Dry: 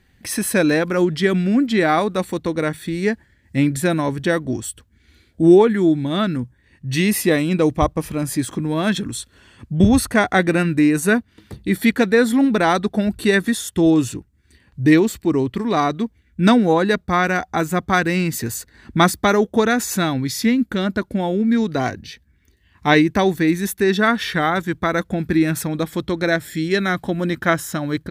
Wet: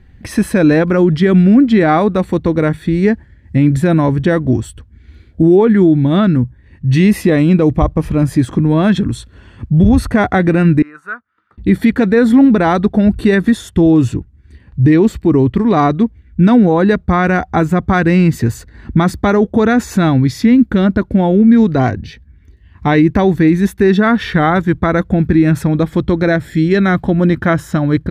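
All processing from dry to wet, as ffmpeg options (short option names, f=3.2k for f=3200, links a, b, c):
-filter_complex "[0:a]asettb=1/sr,asplit=3[a][b][c];[a]atrim=end=10.824[d];[b]atrim=start=10.82:end=11.58,asetpts=PTS-STARTPTS,afade=t=in:d=0.004:c=qsin,afade=t=out:st=0.756:d=0.004:c=qsin,bandpass=f=1.3k:t=q:w=9.5,aemphasis=mode=production:type=50kf[e];[c]atrim=start=11.576[f];[d][e]acrossfade=d=0.004:c1=hsin:c2=qsin[g];[g][f]acrossfade=d=0.004:c1=qsin:c2=hsin,lowpass=f=1.7k:p=1,lowshelf=f=140:g=11.5,alimiter=level_in=8dB:limit=-1dB:release=50:level=0:latency=1,volume=-1dB"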